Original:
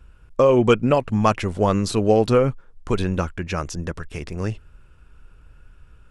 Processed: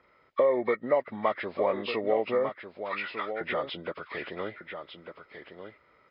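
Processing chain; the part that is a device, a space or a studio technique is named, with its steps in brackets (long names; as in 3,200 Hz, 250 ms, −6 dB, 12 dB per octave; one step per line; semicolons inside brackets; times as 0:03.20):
0:02.49–0:03.41: high-pass filter 1,100 Hz 24 dB per octave
hearing aid with frequency lowering (hearing-aid frequency compression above 1,100 Hz 1.5 to 1; downward compressor 2.5 to 1, threshold −27 dBFS, peak gain reduction 11 dB; loudspeaker in its box 380–6,400 Hz, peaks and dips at 590 Hz +6 dB, 2,200 Hz +7 dB, 4,400 Hz −7 dB)
single-tap delay 1,199 ms −9 dB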